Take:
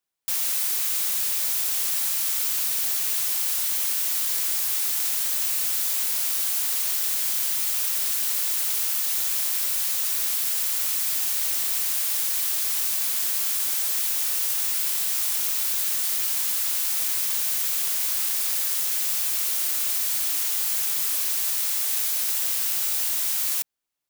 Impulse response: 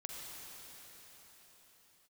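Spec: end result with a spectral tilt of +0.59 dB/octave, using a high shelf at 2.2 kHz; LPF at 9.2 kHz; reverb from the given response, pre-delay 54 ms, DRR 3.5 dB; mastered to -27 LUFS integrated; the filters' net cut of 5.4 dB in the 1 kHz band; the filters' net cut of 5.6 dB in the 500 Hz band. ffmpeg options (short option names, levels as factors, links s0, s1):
-filter_complex "[0:a]lowpass=9200,equalizer=f=500:t=o:g=-5.5,equalizer=f=1000:t=o:g=-3.5,highshelf=f=2200:g=-8.5,asplit=2[s0][s1];[1:a]atrim=start_sample=2205,adelay=54[s2];[s1][s2]afir=irnorm=-1:irlink=0,volume=0.75[s3];[s0][s3]amix=inputs=2:normalize=0,volume=2.37"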